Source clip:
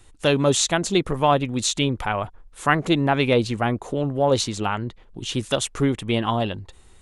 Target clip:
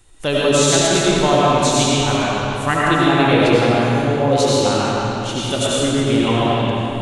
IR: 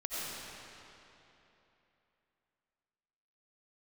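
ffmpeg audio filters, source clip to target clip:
-filter_complex "[0:a]highshelf=f=7.6k:g=4.5[a];[1:a]atrim=start_sample=2205[b];[a][b]afir=irnorm=-1:irlink=0,volume=2dB"

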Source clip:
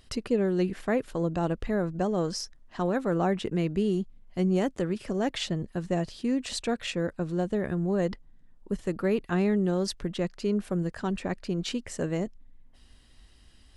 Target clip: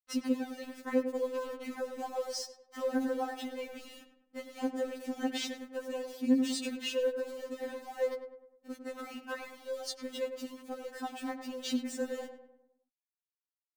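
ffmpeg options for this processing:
-filter_complex "[0:a]highpass=100,acompressor=threshold=-27dB:ratio=8,aeval=exprs='val(0)*gte(abs(val(0)),0.0075)':c=same,asplit=2[a][b];[b]adelay=102,lowpass=f=1.7k:p=1,volume=-8dB,asplit=2[c][d];[d]adelay=102,lowpass=f=1.7k:p=1,volume=0.49,asplit=2[e][f];[f]adelay=102,lowpass=f=1.7k:p=1,volume=0.49,asplit=2[g][h];[h]adelay=102,lowpass=f=1.7k:p=1,volume=0.49,asplit=2[i][j];[j]adelay=102,lowpass=f=1.7k:p=1,volume=0.49,asplit=2[k][l];[l]adelay=102,lowpass=f=1.7k:p=1,volume=0.49[m];[c][e][g][i][k][m]amix=inputs=6:normalize=0[n];[a][n]amix=inputs=2:normalize=0,afftfilt=real='re*3.46*eq(mod(b,12),0)':imag='im*3.46*eq(mod(b,12),0)':win_size=2048:overlap=0.75"

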